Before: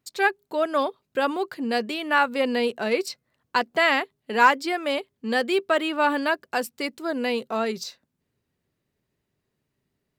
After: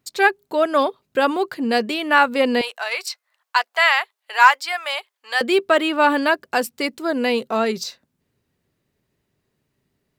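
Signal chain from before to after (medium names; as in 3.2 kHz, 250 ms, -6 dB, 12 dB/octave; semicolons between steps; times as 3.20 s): 2.61–5.41 s: high-pass 790 Hz 24 dB/octave; trim +5.5 dB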